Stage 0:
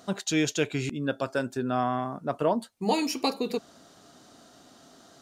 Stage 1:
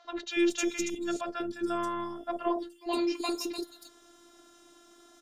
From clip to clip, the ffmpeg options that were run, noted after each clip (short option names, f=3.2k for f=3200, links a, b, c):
-filter_complex "[0:a]bandreject=f=60:t=h:w=6,bandreject=f=120:t=h:w=6,bandreject=f=180:t=h:w=6,bandreject=f=240:t=h:w=6,afftfilt=real='hypot(re,im)*cos(PI*b)':imag='0':win_size=512:overlap=0.75,acrossover=split=630|4600[a][b][c];[a]adelay=50[d];[c]adelay=310[e];[d][b][e]amix=inputs=3:normalize=0,volume=2dB"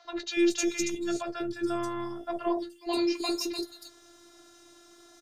-filter_complex "[0:a]equalizer=f=100:t=o:w=0.33:g=10,equalizer=f=250:t=o:w=0.33:g=-8,equalizer=f=500:t=o:w=0.33:g=-3,equalizer=f=5k:t=o:w=0.33:g=6,acrossover=split=150|1100|2600[a][b][c][d];[c]alimiter=level_in=14.5dB:limit=-24dB:level=0:latency=1,volume=-14.5dB[e];[a][b][e][d]amix=inputs=4:normalize=0,asplit=2[f][g];[g]adelay=15,volume=-9dB[h];[f][h]amix=inputs=2:normalize=0,volume=1.5dB"